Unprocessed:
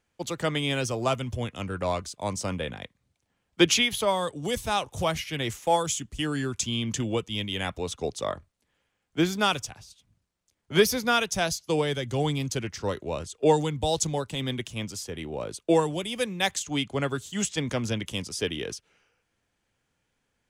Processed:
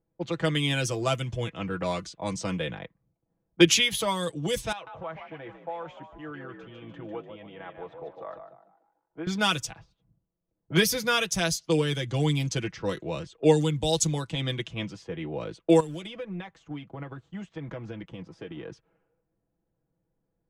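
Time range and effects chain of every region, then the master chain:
4.72–9.27 s: three-band isolator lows -14 dB, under 430 Hz, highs -20 dB, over 3.2 kHz + compression 2.5:1, threshold -38 dBFS + frequency-shifting echo 148 ms, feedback 47%, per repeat +54 Hz, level -7 dB
15.80–18.72 s: companding laws mixed up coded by A + compression 20:1, threshold -33 dBFS
whole clip: level-controlled noise filter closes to 550 Hz, open at -24.5 dBFS; dynamic bell 780 Hz, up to -6 dB, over -37 dBFS, Q 1.2; comb 6.1 ms, depth 65%

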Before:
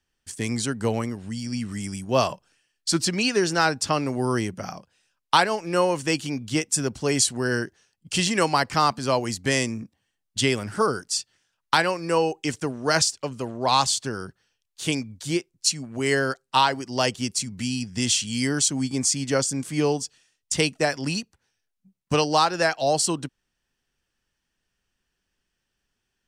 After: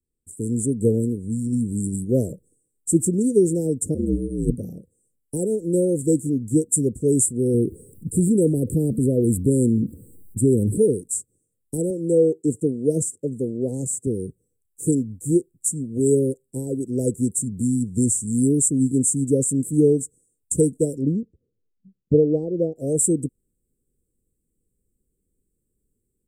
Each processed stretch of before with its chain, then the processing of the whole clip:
3.94–4.58 s: bass shelf 280 Hz +8 dB + compressor with a negative ratio -25 dBFS, ratio -0.5 + ring modulator 59 Hz
7.54–10.78 s: static phaser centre 2.7 kHz, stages 4 + level flattener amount 50%
11.90–14.07 s: high-pass 110 Hz + treble shelf 7.1 kHz -7 dB
21.02–22.76 s: low-pass 3.4 kHz 24 dB/octave + peaking EQ 890 Hz +4 dB 1.7 oct
whole clip: Chebyshev band-stop 490–7700 Hz, order 5; level rider gain up to 10 dB; trim -2.5 dB

